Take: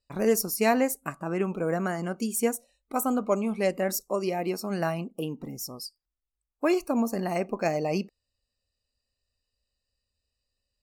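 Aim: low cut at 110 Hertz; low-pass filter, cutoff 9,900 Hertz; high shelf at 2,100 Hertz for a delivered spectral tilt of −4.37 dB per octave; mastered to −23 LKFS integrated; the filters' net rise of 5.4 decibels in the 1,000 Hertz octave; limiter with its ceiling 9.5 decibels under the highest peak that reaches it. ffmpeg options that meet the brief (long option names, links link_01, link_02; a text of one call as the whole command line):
ffmpeg -i in.wav -af "highpass=110,lowpass=9900,equalizer=frequency=1000:width_type=o:gain=7,highshelf=frequency=2100:gain=3.5,volume=5dB,alimiter=limit=-10dB:level=0:latency=1" out.wav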